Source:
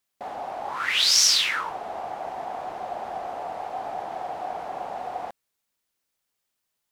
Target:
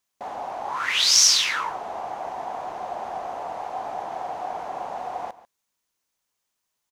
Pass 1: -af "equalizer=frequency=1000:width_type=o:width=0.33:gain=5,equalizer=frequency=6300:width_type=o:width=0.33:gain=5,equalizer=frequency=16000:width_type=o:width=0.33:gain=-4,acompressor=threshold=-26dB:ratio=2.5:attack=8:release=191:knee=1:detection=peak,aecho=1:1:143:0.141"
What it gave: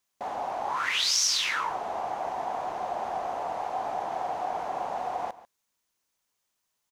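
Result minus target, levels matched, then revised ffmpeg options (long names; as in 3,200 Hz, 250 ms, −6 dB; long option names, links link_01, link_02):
downward compressor: peak gain reduction +9.5 dB
-af "equalizer=frequency=1000:width_type=o:width=0.33:gain=5,equalizer=frequency=6300:width_type=o:width=0.33:gain=5,equalizer=frequency=16000:width_type=o:width=0.33:gain=-4,aecho=1:1:143:0.141"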